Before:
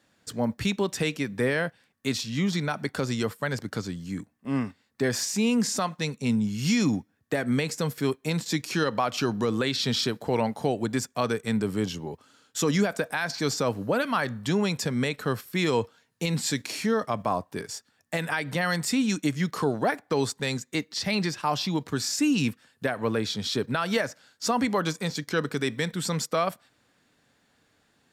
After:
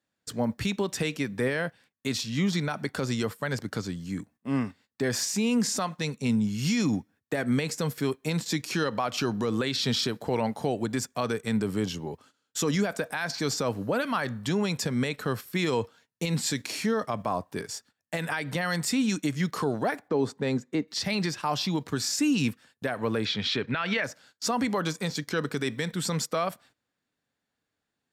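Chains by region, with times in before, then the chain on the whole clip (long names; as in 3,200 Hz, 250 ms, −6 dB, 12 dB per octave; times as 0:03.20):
0:20.08–0:20.88: high-pass filter 270 Hz + spectral tilt −4.5 dB per octave
0:23.25–0:24.04: low-pass filter 4,000 Hz + parametric band 2,300 Hz +11 dB 1.3 octaves + one half of a high-frequency compander decoder only
whole clip: noise gate −53 dBFS, range −17 dB; brickwall limiter −17.5 dBFS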